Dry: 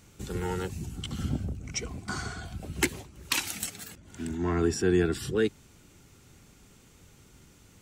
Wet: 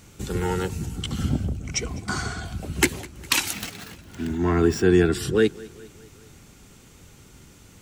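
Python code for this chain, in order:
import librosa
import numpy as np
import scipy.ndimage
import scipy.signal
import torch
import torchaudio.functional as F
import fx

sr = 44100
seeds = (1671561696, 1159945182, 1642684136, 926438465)

y = fx.median_filter(x, sr, points=5, at=(3.53, 4.85))
y = fx.echo_feedback(y, sr, ms=204, feedback_pct=57, wet_db=-22)
y = y * librosa.db_to_amplitude(6.5)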